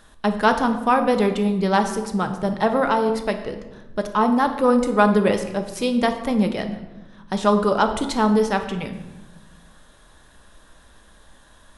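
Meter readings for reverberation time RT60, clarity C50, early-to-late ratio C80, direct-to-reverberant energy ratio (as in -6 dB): 1.1 s, 9.5 dB, 11.5 dB, 6.0 dB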